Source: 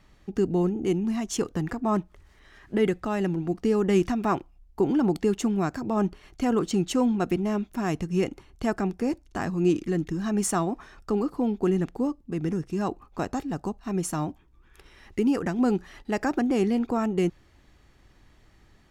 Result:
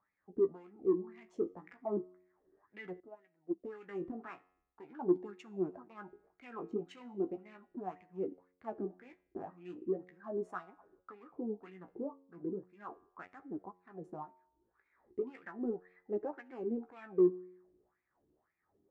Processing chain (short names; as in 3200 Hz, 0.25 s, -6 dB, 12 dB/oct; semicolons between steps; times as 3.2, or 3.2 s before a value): Wiener smoothing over 15 samples; low shelf 370 Hz +8.5 dB; reverb, pre-delay 50 ms, DRR 25.5 dB; wah 1.9 Hz 350–2400 Hz, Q 5.4; soft clip -14.5 dBFS, distortion -22 dB; flange 0.37 Hz, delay 9.4 ms, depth 9.1 ms, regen +33%; resonator 91 Hz, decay 0.75 s, harmonics all, mix 40%; 3–3.64 upward expander 2.5:1, over -44 dBFS; gain +2.5 dB